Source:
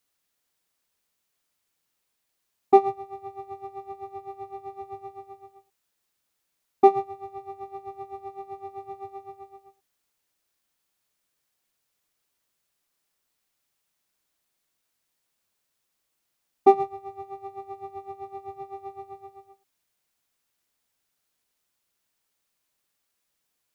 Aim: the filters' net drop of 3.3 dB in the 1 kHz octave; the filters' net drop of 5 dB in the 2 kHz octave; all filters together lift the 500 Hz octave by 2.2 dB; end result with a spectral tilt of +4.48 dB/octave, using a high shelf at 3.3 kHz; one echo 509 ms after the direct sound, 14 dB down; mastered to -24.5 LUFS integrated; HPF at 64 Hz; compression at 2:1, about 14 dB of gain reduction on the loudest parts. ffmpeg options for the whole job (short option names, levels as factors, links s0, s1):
-af "highpass=64,equalizer=f=500:t=o:g=4.5,equalizer=f=1000:t=o:g=-6.5,equalizer=f=2000:t=o:g=-3,highshelf=f=3300:g=-5,acompressor=threshold=0.0158:ratio=2,aecho=1:1:509:0.2,volume=5.96"